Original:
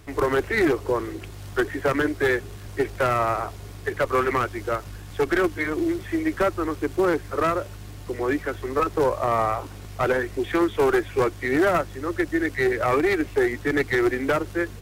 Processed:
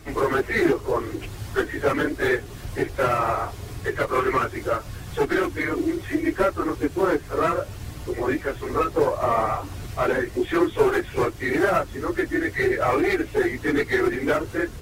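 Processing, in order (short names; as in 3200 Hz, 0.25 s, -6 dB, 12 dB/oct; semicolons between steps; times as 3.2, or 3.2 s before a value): phase scrambler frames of 50 ms; in parallel at +1 dB: compressor, threshold -32 dBFS, peak gain reduction 18 dB; on the sum: gain -2 dB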